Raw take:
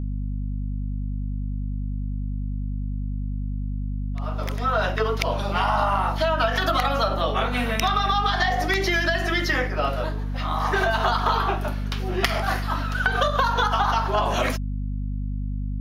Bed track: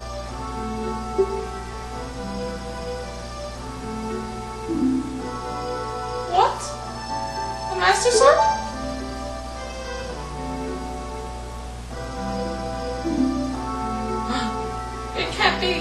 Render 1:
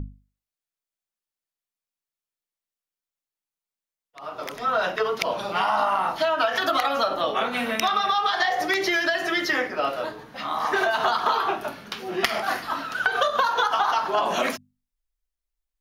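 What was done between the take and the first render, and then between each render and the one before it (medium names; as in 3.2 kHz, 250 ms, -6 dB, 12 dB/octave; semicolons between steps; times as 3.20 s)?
hum notches 50/100/150/200/250 Hz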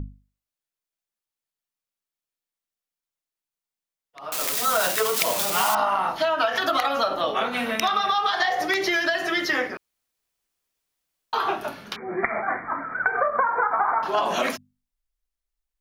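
4.32–5.75 s: zero-crossing glitches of -14.5 dBFS; 9.77–11.33 s: room tone; 11.96–14.03 s: brick-wall FIR low-pass 2.4 kHz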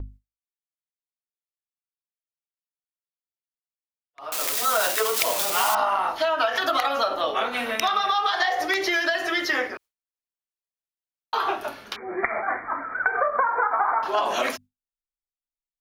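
gate with hold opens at -36 dBFS; peaking EQ 170 Hz -13.5 dB 0.76 oct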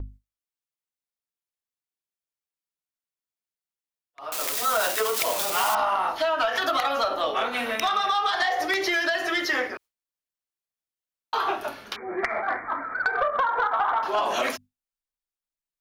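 saturation -14.5 dBFS, distortion -19 dB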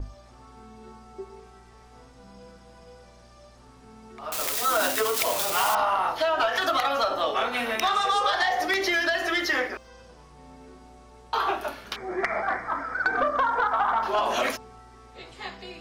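add bed track -19 dB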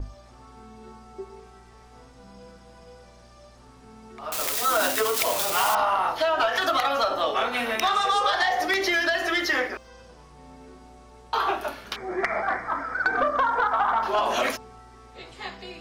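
trim +1 dB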